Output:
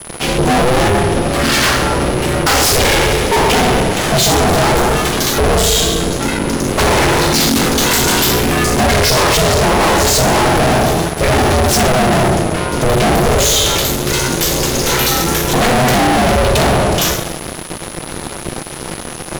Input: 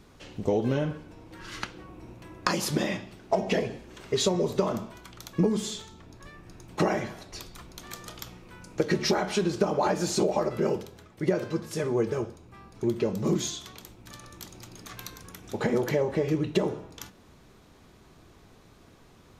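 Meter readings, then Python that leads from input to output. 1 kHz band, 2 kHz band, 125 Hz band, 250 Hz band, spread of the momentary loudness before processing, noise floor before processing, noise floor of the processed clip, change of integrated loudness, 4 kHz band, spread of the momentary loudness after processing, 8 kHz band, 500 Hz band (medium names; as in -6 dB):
+21.0 dB, +22.5 dB, +18.0 dB, +14.0 dB, 19 LU, -56 dBFS, -27 dBFS, +16.0 dB, +22.5 dB, 8 LU, +23.0 dB, +14.5 dB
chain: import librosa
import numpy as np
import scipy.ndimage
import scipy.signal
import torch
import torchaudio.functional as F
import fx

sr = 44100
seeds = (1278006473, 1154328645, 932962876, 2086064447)

y = fx.rider(x, sr, range_db=4, speed_s=0.5)
y = fx.rev_double_slope(y, sr, seeds[0], early_s=0.48, late_s=1.7, knee_db=-18, drr_db=-4.5)
y = fx.fuzz(y, sr, gain_db=42.0, gate_db=-49.0)
y = y + 10.0 ** (-34.0 / 20.0) * np.sin(2.0 * np.pi * 10000.0 * np.arange(len(y)) / sr)
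y = y * np.sin(2.0 * np.pi * 250.0 * np.arange(len(y)) / sr)
y = y * librosa.db_to_amplitude(5.5)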